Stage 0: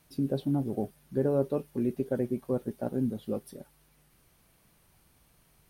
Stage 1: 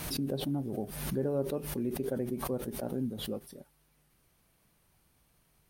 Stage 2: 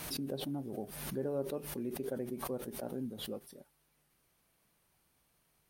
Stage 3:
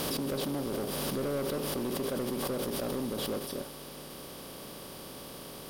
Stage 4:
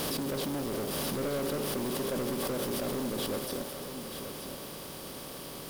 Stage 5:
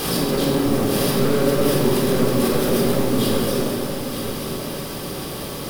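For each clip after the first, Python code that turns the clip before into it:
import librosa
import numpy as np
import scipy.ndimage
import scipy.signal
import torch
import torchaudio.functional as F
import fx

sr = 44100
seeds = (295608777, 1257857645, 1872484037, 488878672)

y1 = fx.pre_swell(x, sr, db_per_s=49.0)
y1 = F.gain(torch.from_numpy(y1), -5.0).numpy()
y2 = fx.low_shelf(y1, sr, hz=180.0, db=-8.0)
y2 = F.gain(torch.from_numpy(y2), -3.0).numpy()
y3 = fx.bin_compress(y2, sr, power=0.4)
y3 = np.clip(y3, -10.0 ** (-31.5 / 20.0), 10.0 ** (-31.5 / 20.0))
y3 = F.gain(torch.from_numpy(y3), 3.0).numpy()
y4 = fx.quant_companded(y3, sr, bits=4)
y4 = y4 + 10.0 ** (-9.0 / 20.0) * np.pad(y4, (int(929 * sr / 1000.0), 0))[:len(y4)]
y4 = F.gain(torch.from_numpy(y4), 1.0).numpy()
y5 = fx.room_shoebox(y4, sr, seeds[0], volume_m3=1500.0, walls='mixed', distance_m=3.8)
y5 = F.gain(torch.from_numpy(y5), 5.5).numpy()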